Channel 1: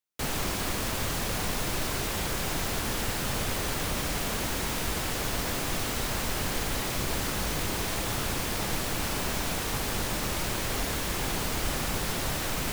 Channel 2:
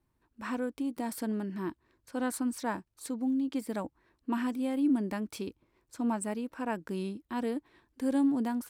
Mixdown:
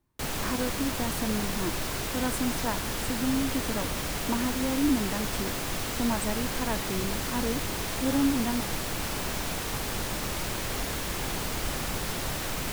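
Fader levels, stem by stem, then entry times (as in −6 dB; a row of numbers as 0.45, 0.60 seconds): −1.5, +1.5 decibels; 0.00, 0.00 seconds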